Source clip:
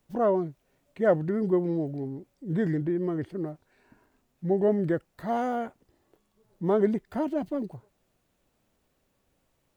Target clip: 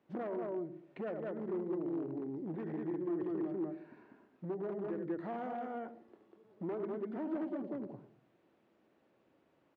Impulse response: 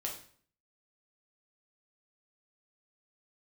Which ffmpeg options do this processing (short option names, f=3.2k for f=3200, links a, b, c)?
-filter_complex "[0:a]aecho=1:1:72.89|195.3:0.355|0.708,acompressor=threshold=-36dB:ratio=12,asoftclip=type=tanh:threshold=-32dB,asplit=2[a][b];[b]tiltshelf=f=790:g=8.5[c];[1:a]atrim=start_sample=2205,adelay=82[d];[c][d]afir=irnorm=-1:irlink=0,volume=-16dB[e];[a][e]amix=inputs=2:normalize=0,aeval=exprs='0.0178*(abs(mod(val(0)/0.0178+3,4)-2)-1)':c=same,highpass=190,lowpass=2.4k,equalizer=f=340:w=3.2:g=6.5"